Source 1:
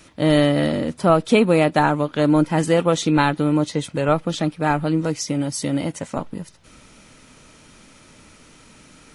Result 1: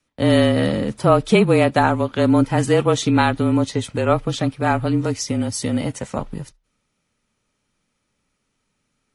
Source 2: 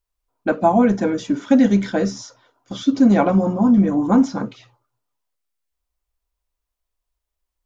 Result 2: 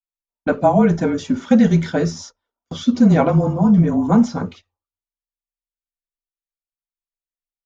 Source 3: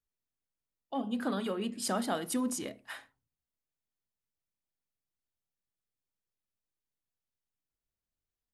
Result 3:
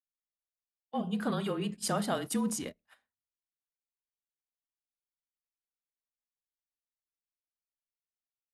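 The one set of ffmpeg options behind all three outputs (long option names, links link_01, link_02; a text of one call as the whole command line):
ffmpeg -i in.wav -af "agate=range=-25dB:threshold=-38dB:ratio=16:detection=peak,afreqshift=-31,volume=1dB" out.wav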